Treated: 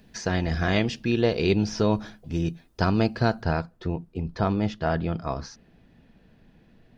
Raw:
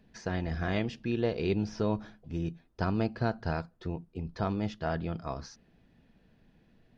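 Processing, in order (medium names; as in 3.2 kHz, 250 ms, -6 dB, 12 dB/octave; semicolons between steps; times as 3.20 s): treble shelf 3.9 kHz +9.5 dB, from 3.43 s -2 dB; trim +7 dB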